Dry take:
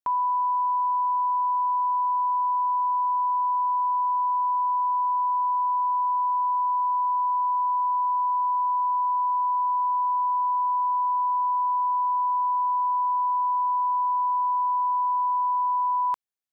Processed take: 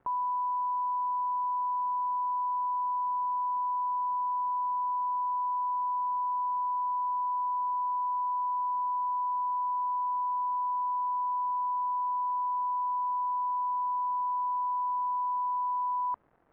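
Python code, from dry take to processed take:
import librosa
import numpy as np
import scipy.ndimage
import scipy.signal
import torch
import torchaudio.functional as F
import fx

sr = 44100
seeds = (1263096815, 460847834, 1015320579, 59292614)

y = fx.dmg_crackle(x, sr, seeds[0], per_s=520.0, level_db=-40.0)
y = scipy.signal.sosfilt(scipy.signal.bessel(4, 940.0, 'lowpass', norm='mag', fs=sr, output='sos'), y)
y = y * librosa.db_to_amplitude(-3.0)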